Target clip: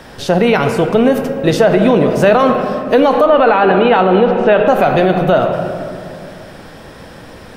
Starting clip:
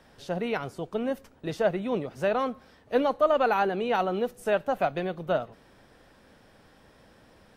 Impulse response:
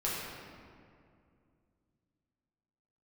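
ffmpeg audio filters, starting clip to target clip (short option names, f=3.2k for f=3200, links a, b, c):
-filter_complex "[0:a]asettb=1/sr,asplit=3[a][b][c];[a]atrim=end=3.264[d];[b]atrim=start=3.26:end=4.68,asetpts=PTS-STARTPTS,afade=t=in:d=0.004:c=qsin,afade=t=out:st=1.416:d=0.004:c=qsin,lowpass=f=3.8k:w=0.5412,lowpass=f=3.8k:w=1.3066[e];[c]atrim=start=4.676[f];[d][e]acrossfade=d=0.004:c1=hsin:c2=qsin[g];[g][f]acrossfade=d=0.004:c1=qsin:c2=hsin,asplit=2[h][i];[1:a]atrim=start_sample=2205[j];[i][j]afir=irnorm=-1:irlink=0,volume=-11.5dB[k];[h][k]amix=inputs=2:normalize=0,alimiter=level_in=20dB:limit=-1dB:release=50:level=0:latency=1,volume=-1dB"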